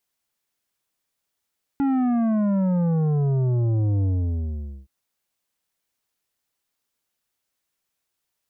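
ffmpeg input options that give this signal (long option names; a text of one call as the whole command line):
ffmpeg -f lavfi -i "aevalsrc='0.106*clip((3.07-t)/0.83,0,1)*tanh(2.99*sin(2*PI*280*3.07/log(65/280)*(exp(log(65/280)*t/3.07)-1)))/tanh(2.99)':duration=3.07:sample_rate=44100" out.wav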